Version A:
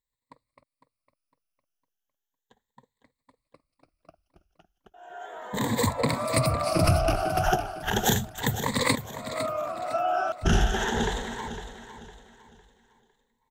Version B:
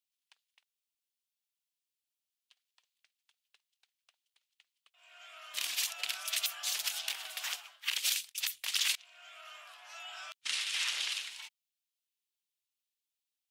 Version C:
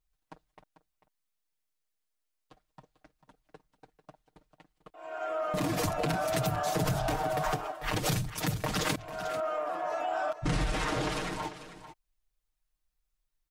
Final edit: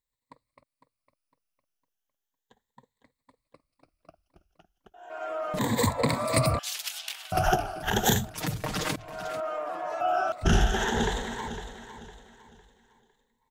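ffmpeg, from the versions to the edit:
-filter_complex "[2:a]asplit=2[a][b];[0:a]asplit=4[c][d][e][f];[c]atrim=end=5.102[g];[a]atrim=start=5.098:end=5.592[h];[d]atrim=start=5.588:end=6.592[i];[1:a]atrim=start=6.588:end=7.322[j];[e]atrim=start=7.318:end=8.342[k];[b]atrim=start=8.338:end=10.012[l];[f]atrim=start=10.008[m];[g][h]acrossfade=d=0.004:c1=hsin:c2=hsin[n];[n][i]acrossfade=d=0.004:c1=hsin:c2=hsin[o];[o][j]acrossfade=d=0.004:c1=hsin:c2=hsin[p];[p][k]acrossfade=d=0.004:c1=hsin:c2=hsin[q];[q][l]acrossfade=d=0.004:c1=hsin:c2=hsin[r];[r][m]acrossfade=d=0.004:c1=hsin:c2=hsin"

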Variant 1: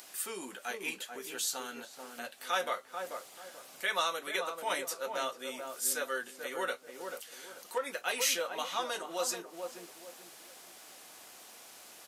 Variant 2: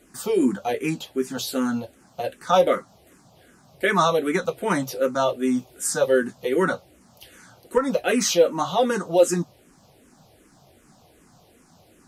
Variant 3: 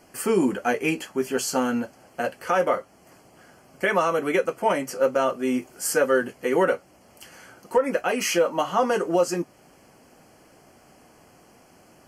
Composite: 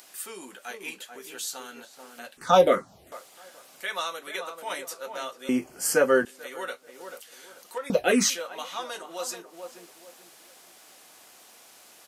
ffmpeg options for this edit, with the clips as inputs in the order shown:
-filter_complex "[1:a]asplit=2[a][b];[0:a]asplit=4[c][d][e][f];[c]atrim=end=2.372[g];[a]atrim=start=2.368:end=3.122[h];[d]atrim=start=3.118:end=5.492[i];[2:a]atrim=start=5.488:end=6.252[j];[e]atrim=start=6.248:end=7.902[k];[b]atrim=start=7.898:end=8.302[l];[f]atrim=start=8.298[m];[g][h]acrossfade=d=0.004:c1=hsin:c2=hsin[n];[n][i]acrossfade=d=0.004:c1=hsin:c2=hsin[o];[o][j]acrossfade=d=0.004:c1=hsin:c2=hsin[p];[p][k]acrossfade=d=0.004:c1=hsin:c2=hsin[q];[q][l]acrossfade=d=0.004:c1=hsin:c2=hsin[r];[r][m]acrossfade=d=0.004:c1=hsin:c2=hsin"

